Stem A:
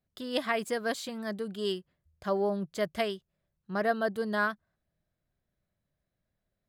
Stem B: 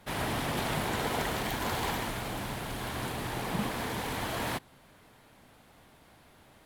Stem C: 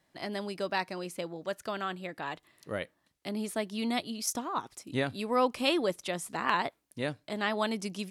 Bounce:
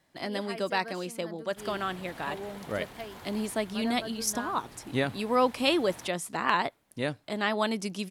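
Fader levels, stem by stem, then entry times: −11.0, −15.0, +2.5 decibels; 0.00, 1.50, 0.00 seconds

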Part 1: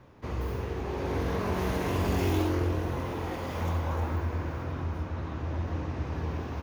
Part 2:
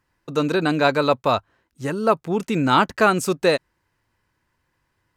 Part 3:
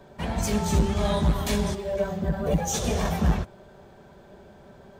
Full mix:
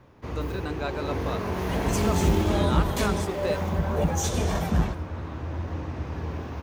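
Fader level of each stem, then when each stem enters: +0.5, −14.5, −1.5 decibels; 0.00, 0.00, 1.50 seconds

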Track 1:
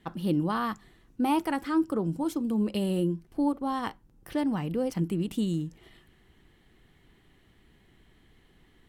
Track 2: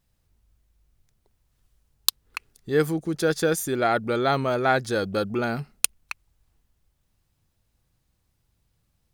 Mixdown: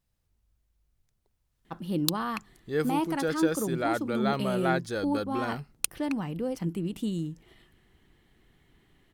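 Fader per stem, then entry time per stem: −2.5, −7.0 decibels; 1.65, 0.00 seconds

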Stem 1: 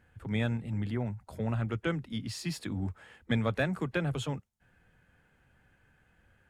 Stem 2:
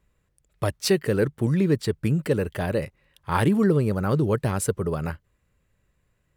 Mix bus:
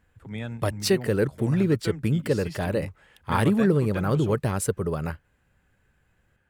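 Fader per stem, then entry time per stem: −3.5, −1.0 decibels; 0.00, 0.00 seconds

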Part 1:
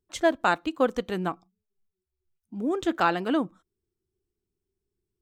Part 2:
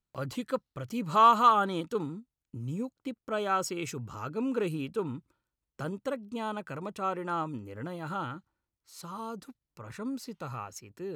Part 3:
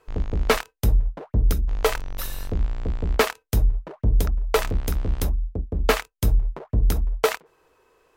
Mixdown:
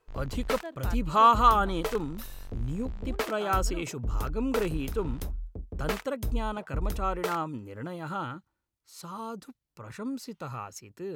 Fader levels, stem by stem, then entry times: −18.5, +1.0, −11.5 decibels; 0.40, 0.00, 0.00 seconds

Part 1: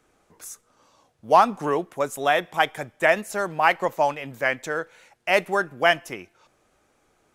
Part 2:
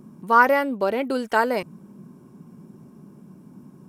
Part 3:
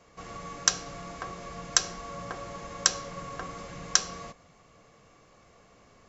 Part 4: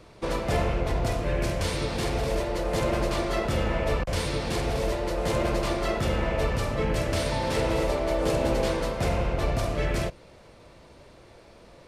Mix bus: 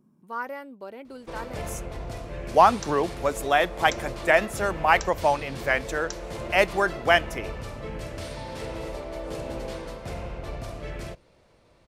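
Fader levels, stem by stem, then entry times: −0.5, −17.0, −16.0, −9.0 decibels; 1.25, 0.00, 2.15, 1.05 seconds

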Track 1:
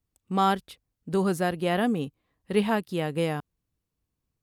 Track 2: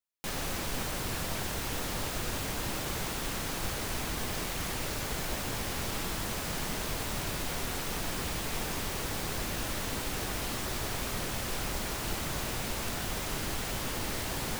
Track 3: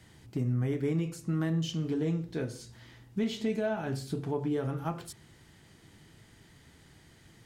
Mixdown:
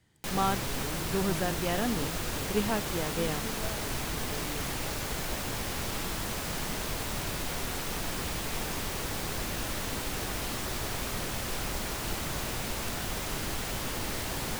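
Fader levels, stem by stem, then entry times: −6.0, +0.5, −11.5 decibels; 0.00, 0.00, 0.00 seconds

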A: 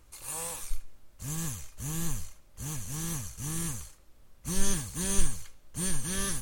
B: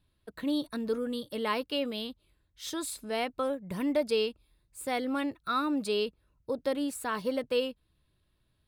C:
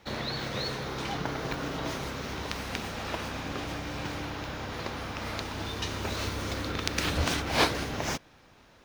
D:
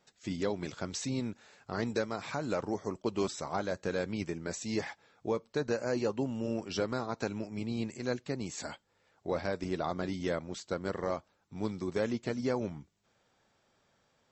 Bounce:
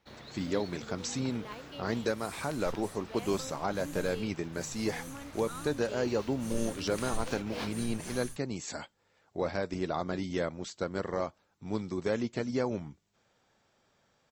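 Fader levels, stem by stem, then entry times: −13.0, −15.0, −15.5, +1.0 decibels; 1.95, 0.00, 0.00, 0.10 seconds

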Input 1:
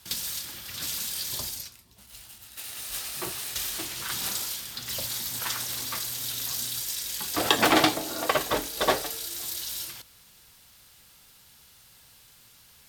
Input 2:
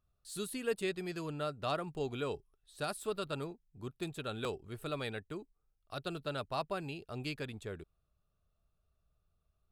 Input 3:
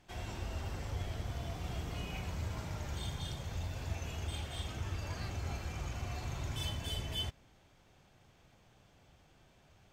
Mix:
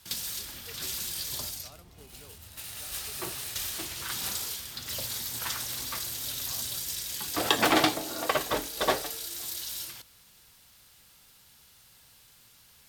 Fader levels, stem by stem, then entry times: −2.5, −19.0, −15.5 decibels; 0.00, 0.00, 0.00 seconds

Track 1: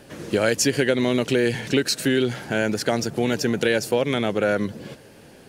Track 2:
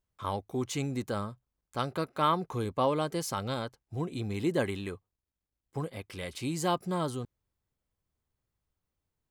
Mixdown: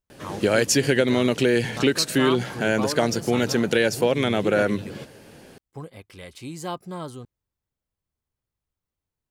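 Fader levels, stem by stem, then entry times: +0.5, −2.5 decibels; 0.10, 0.00 seconds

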